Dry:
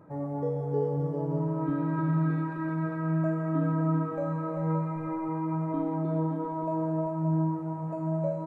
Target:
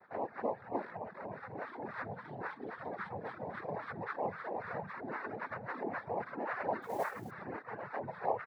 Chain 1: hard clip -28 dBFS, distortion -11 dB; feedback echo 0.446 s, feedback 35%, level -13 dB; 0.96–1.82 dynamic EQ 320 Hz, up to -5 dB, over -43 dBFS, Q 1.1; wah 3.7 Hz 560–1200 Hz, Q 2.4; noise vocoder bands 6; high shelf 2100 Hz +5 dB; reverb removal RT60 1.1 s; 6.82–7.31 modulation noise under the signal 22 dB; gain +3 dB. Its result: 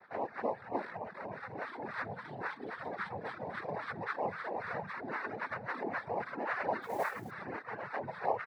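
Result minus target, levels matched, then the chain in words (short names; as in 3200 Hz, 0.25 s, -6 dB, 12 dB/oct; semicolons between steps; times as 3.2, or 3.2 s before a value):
4000 Hz band +5.5 dB
hard clip -28 dBFS, distortion -11 dB; feedback echo 0.446 s, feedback 35%, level -13 dB; 0.96–1.82 dynamic EQ 320 Hz, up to -5 dB, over -43 dBFS, Q 1.1; wah 3.7 Hz 560–1200 Hz, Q 2.4; noise vocoder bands 6; high shelf 2100 Hz -5.5 dB; reverb removal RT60 1.1 s; 6.82–7.31 modulation noise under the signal 22 dB; gain +3 dB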